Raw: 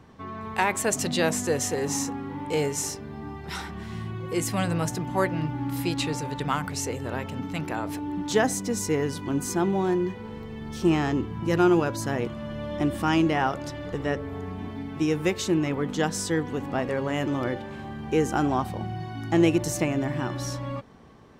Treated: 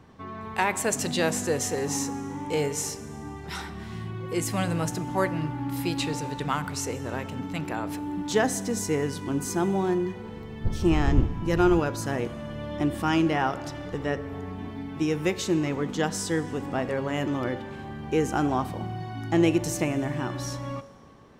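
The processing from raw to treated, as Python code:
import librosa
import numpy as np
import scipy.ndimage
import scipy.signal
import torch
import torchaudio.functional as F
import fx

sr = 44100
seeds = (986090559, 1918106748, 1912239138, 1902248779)

y = fx.dmg_wind(x, sr, seeds[0], corner_hz=83.0, level_db=-22.0, at=(10.64, 11.79), fade=0.02)
y = fx.rev_schroeder(y, sr, rt60_s=1.6, comb_ms=27, drr_db=15.5)
y = y * librosa.db_to_amplitude(-1.0)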